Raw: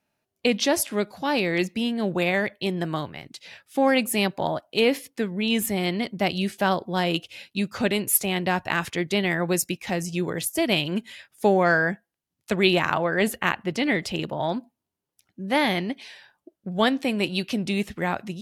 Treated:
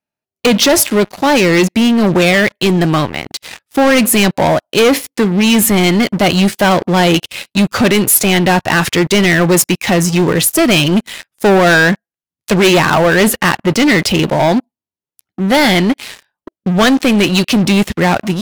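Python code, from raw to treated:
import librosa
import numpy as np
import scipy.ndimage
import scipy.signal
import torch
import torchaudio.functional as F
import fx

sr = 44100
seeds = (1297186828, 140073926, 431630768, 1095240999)

y = fx.leveller(x, sr, passes=5)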